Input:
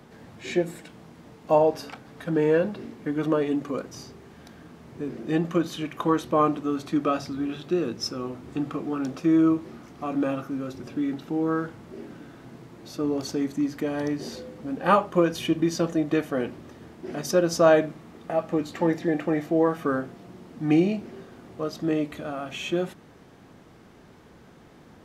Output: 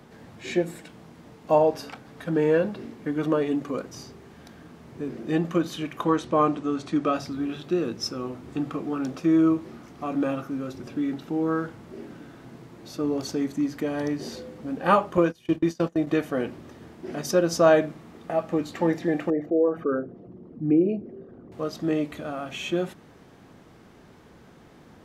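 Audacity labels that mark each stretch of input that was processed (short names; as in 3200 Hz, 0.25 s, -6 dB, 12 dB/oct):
6.050000	7.150000	LPF 9300 Hz 24 dB/oct
15.170000	16.070000	gate -29 dBFS, range -23 dB
19.300000	21.520000	formant sharpening exponent 2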